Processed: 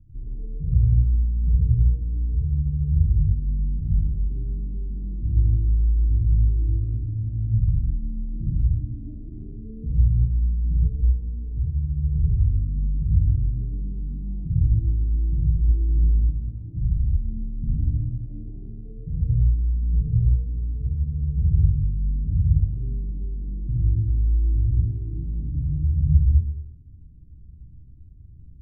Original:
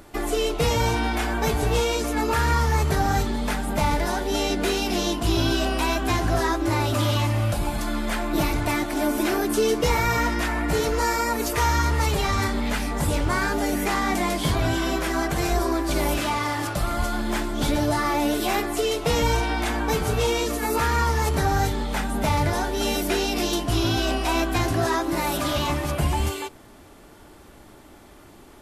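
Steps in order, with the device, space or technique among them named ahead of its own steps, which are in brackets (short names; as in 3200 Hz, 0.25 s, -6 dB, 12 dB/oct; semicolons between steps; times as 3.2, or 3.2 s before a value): club heard from the street (limiter -15 dBFS, peak gain reduction 4.5 dB; LPF 140 Hz 24 dB/oct; reverb RT60 0.75 s, pre-delay 54 ms, DRR -6.5 dB); gain +1.5 dB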